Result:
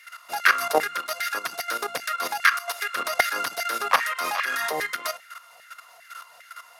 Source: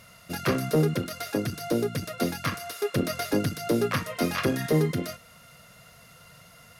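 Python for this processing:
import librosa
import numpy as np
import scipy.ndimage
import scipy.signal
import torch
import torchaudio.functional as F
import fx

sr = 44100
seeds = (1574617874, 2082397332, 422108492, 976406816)

y = fx.filter_lfo_highpass(x, sr, shape='saw_down', hz=2.5, low_hz=710.0, high_hz=1900.0, q=4.0)
y = fx.level_steps(y, sr, step_db=12)
y = y * librosa.db_to_amplitude(9.0)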